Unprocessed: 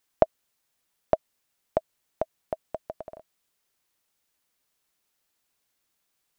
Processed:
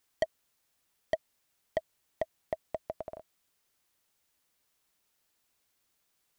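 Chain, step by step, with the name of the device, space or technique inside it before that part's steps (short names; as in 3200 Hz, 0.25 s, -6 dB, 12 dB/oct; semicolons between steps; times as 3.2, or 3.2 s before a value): open-reel tape (soft clip -21 dBFS, distortion -4 dB; bell 73 Hz +3.5 dB 0.98 oct; white noise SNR 43 dB)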